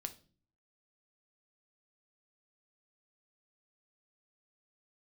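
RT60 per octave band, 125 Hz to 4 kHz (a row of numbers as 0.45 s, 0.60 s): 0.75 s, 0.70 s, 0.50 s, 0.35 s, 0.35 s, 0.35 s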